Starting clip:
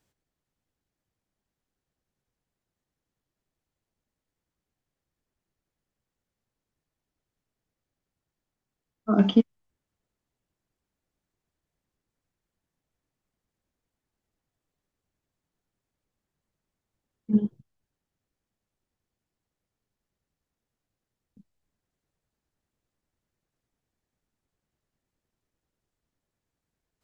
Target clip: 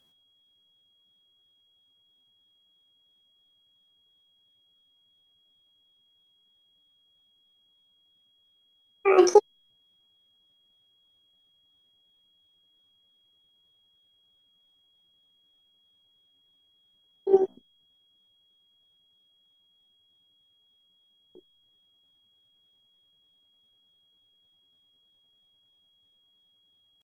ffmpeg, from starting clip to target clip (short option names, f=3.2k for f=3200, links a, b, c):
-af "aeval=exprs='val(0)+0.000447*sin(2*PI*1800*n/s)':c=same,asetrate=80880,aresample=44100,atempo=0.545254,volume=3dB"